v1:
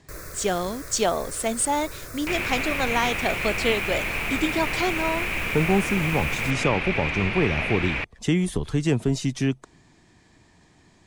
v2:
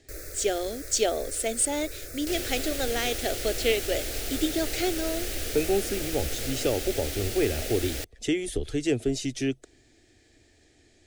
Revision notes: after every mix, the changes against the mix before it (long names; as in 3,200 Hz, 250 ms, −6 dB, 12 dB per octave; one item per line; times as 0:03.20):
second sound: remove low-pass with resonance 2,400 Hz, resonance Q 7.7
master: add phaser with its sweep stopped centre 420 Hz, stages 4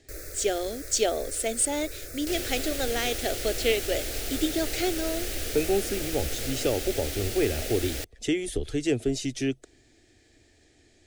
nothing changed